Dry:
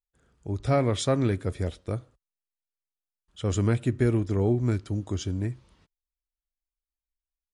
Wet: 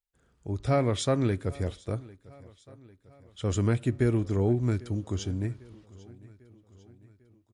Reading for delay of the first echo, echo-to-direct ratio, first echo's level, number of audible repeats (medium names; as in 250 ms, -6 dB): 798 ms, -20.5 dB, -22.0 dB, 3